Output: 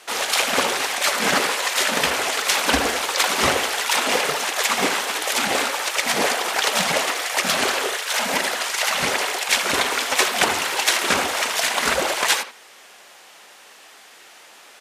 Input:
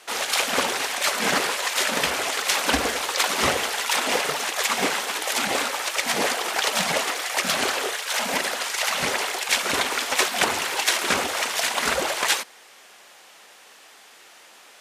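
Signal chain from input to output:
far-end echo of a speakerphone 80 ms, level −9 dB
level +2.5 dB

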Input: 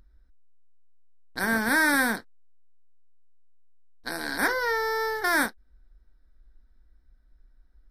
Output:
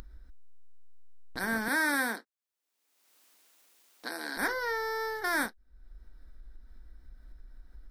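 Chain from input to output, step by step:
0:01.68–0:04.37: high-pass filter 240 Hz 24 dB per octave
upward compression, threshold −28 dBFS
level −6 dB

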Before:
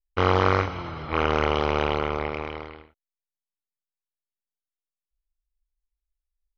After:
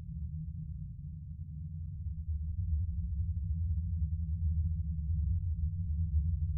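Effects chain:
inverse Chebyshev low-pass filter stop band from 650 Hz, stop band 70 dB
gate on every frequency bin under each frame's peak −20 dB strong
extreme stretch with random phases 28×, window 0.10 s, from 0:01.03

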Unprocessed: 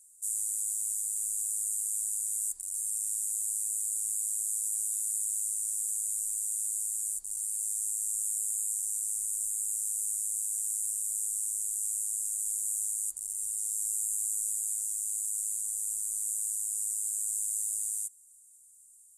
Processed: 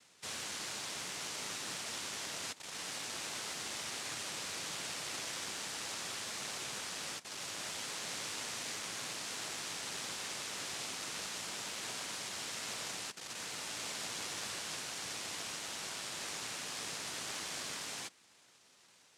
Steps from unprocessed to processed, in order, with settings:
in parallel at −0.5 dB: brickwall limiter −26.5 dBFS, peak gain reduction 7.5 dB
on the sum: half-wave rectification
cochlear-implant simulation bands 1
level −5 dB

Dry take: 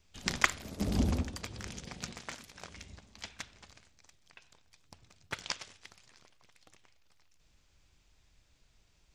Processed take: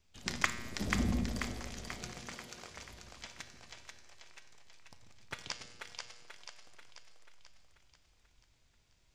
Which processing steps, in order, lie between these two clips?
tuned comb filter 120 Hz, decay 1.2 s, harmonics all, mix 70%
echo with a time of its own for lows and highs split 390 Hz, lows 139 ms, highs 487 ms, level −4 dB
level +5 dB

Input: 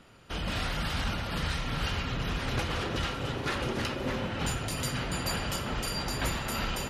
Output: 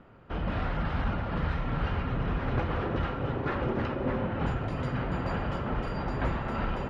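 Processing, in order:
low-pass filter 1,400 Hz 12 dB per octave
level +3 dB

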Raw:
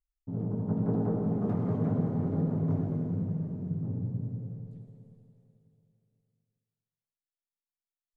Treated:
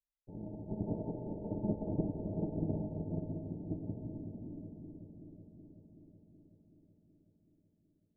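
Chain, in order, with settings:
lower of the sound and its delayed copy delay 2 ms
Chebyshev low-pass with heavy ripple 910 Hz, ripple 9 dB
parametric band 300 Hz +6.5 dB 0.22 octaves
tuned comb filter 210 Hz, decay 0.6 s, harmonics odd, mix 80%
on a send: delay with a low-pass on its return 376 ms, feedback 70%, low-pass 480 Hz, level −4.5 dB
on the sum: expander for the loud parts 2.5 to 1, over −49 dBFS
level +15.5 dB

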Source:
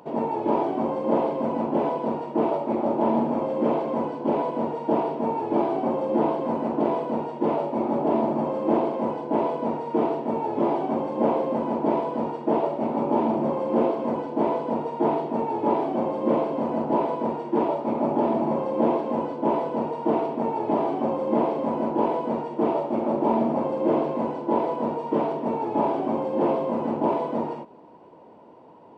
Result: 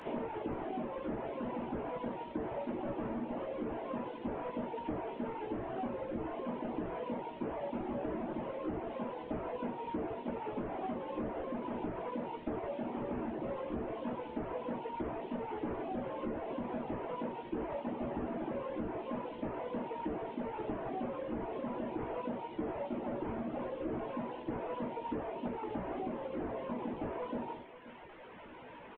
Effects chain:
linear delta modulator 16 kbit/s, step −37.5 dBFS
reverb reduction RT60 1.9 s
downward compressor, threshold −30 dBFS, peak gain reduction 9.5 dB
double-tracking delay 16 ms −6 dB
single-tap delay 530 ms −15 dB
level −5 dB

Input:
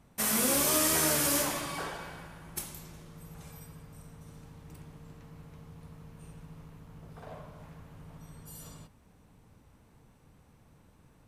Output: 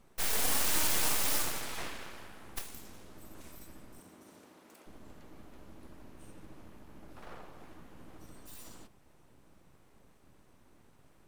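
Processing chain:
full-wave rectification
0:03.98–0:04.86: high-pass filter 110 Hz → 440 Hz 12 dB per octave

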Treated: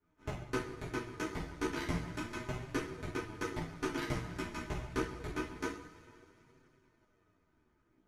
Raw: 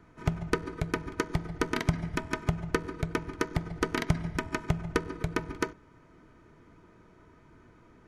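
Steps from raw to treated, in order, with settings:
coupled-rooms reverb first 0.44 s, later 4.2 s, from −16 dB, DRR −9 dB
power curve on the samples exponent 1.4
multi-voice chorus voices 2, 0.3 Hz, delay 12 ms, depth 4.5 ms
level −9 dB

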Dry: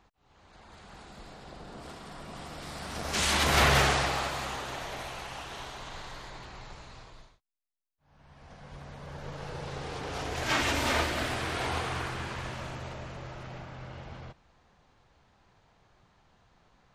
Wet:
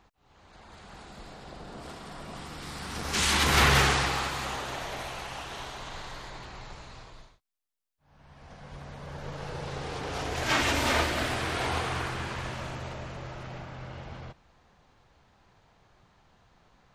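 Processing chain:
0:02.39–0:04.45: parametric band 630 Hz −9 dB 0.37 octaves
level +2 dB

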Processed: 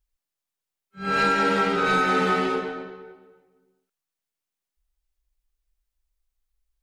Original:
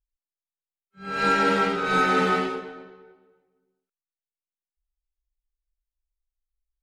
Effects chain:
downward compressor, threshold −26 dBFS, peak gain reduction 9 dB
level +7.5 dB

